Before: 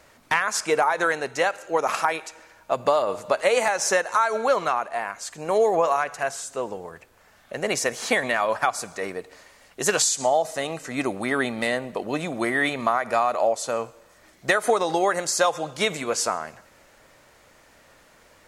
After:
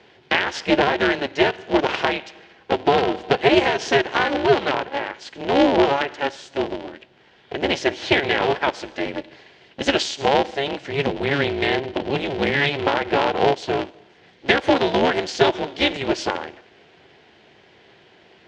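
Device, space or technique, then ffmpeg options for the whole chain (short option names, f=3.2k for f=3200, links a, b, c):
ring modulator pedal into a guitar cabinet: -af "aeval=exprs='val(0)*sgn(sin(2*PI*140*n/s))':c=same,highpass=82,equalizer=f=370:t=q:w=4:g=7,equalizer=f=1.2k:t=q:w=4:g=-10,equalizer=f=3.1k:t=q:w=4:g=6,lowpass=f=4.5k:w=0.5412,lowpass=f=4.5k:w=1.3066,volume=3dB"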